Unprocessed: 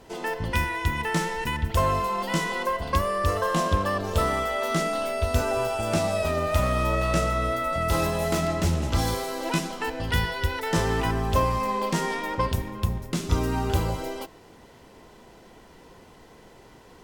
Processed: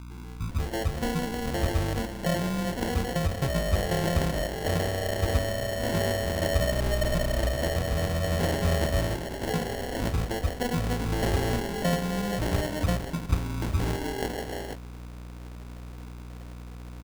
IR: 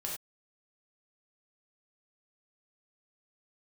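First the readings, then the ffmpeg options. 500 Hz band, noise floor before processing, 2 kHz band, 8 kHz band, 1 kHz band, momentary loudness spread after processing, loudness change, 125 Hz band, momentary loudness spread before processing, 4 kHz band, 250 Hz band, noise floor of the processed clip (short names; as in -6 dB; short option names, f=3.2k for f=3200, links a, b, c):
-2.0 dB, -51 dBFS, -4.0 dB, -2.0 dB, -8.0 dB, 17 LU, -2.5 dB, 0.0 dB, 5 LU, -1.0 dB, 0.0 dB, -41 dBFS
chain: -filter_complex "[0:a]acrossover=split=270[a][b];[b]adelay=490[c];[a][c]amix=inputs=2:normalize=0,aeval=exprs='val(0)+0.0126*(sin(2*PI*60*n/s)+sin(2*PI*2*60*n/s)/2+sin(2*PI*3*60*n/s)/3+sin(2*PI*4*60*n/s)/4+sin(2*PI*5*60*n/s)/5)':c=same,acrusher=samples=36:mix=1:aa=0.000001,volume=-1.5dB"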